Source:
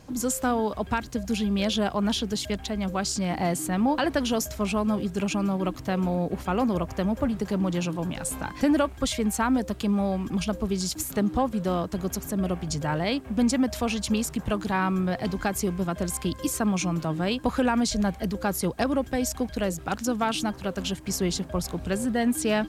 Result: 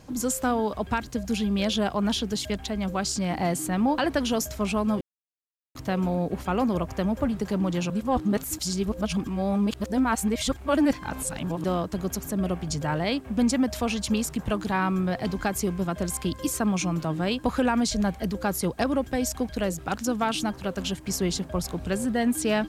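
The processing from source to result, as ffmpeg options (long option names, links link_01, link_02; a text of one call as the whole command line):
ffmpeg -i in.wav -filter_complex "[0:a]asplit=5[link_01][link_02][link_03][link_04][link_05];[link_01]atrim=end=5.01,asetpts=PTS-STARTPTS,afade=type=out:start_time=5.006:duration=0.004:curve=hsin[link_06];[link_02]atrim=start=5.01:end=5.75,asetpts=PTS-STARTPTS,volume=0[link_07];[link_03]atrim=start=5.75:end=7.902,asetpts=PTS-STARTPTS,afade=type=in:duration=0.004:curve=hsin[link_08];[link_04]atrim=start=7.898:end=11.642,asetpts=PTS-STARTPTS,areverse[link_09];[link_05]atrim=start=11.638[link_10];[link_06][link_07][link_08]concat=n=3:v=0:a=1[link_11];[link_11][link_09]acrossfade=duration=0.004:curve1=hsin:curve2=hsin[link_12];[link_12][link_10]acrossfade=duration=0.004:curve1=hsin:curve2=hsin" out.wav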